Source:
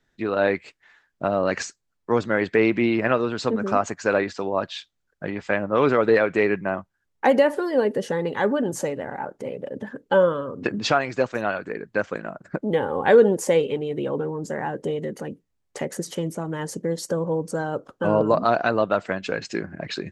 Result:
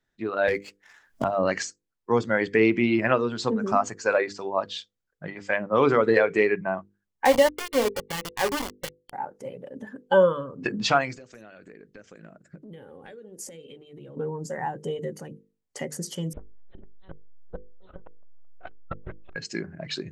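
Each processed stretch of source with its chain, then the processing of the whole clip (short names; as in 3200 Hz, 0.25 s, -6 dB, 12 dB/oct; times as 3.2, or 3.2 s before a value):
0.48–1.24 sample leveller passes 1 + three-band squash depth 100%
7.25–9.13 low shelf 230 Hz -3.5 dB + sample gate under -21 dBFS
11.15–14.17 bell 970 Hz -12 dB 1 oct + compressor 10:1, threshold -33 dBFS
16.33–19.36 monotone LPC vocoder at 8 kHz 190 Hz + tapped delay 41/50/450/845 ms -10.5/-18/-17.5/-6 dB + core saturation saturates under 500 Hz
whole clip: notches 50/100/150/200/250/300/350/400/450/500 Hz; spectral noise reduction 8 dB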